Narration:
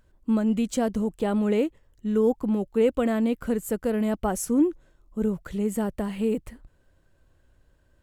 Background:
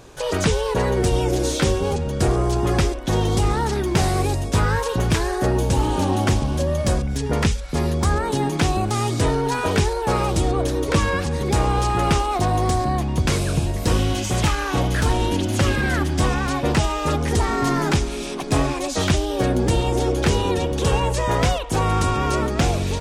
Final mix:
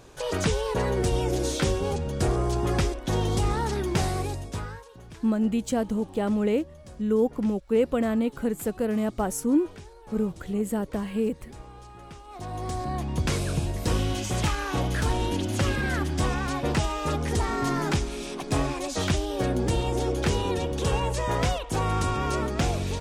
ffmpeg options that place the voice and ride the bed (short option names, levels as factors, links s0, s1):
-filter_complex "[0:a]adelay=4950,volume=0.891[s0];[1:a]volume=5.31,afade=t=out:st=3.91:d=0.95:silence=0.0944061,afade=t=in:st=12.23:d=0.98:silence=0.1[s1];[s0][s1]amix=inputs=2:normalize=0"